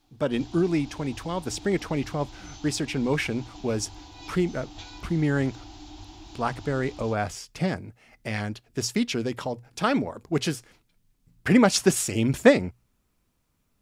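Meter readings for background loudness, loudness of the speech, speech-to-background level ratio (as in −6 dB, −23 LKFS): −45.0 LKFS, −26.5 LKFS, 18.5 dB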